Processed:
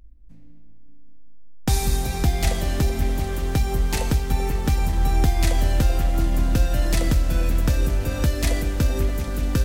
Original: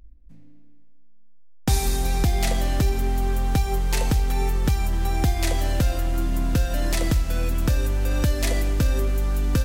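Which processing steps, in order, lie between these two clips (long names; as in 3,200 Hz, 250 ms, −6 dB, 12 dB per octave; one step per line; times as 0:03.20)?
echo whose low-pass opens from repeat to repeat 192 ms, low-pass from 200 Hz, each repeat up 2 octaves, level −6 dB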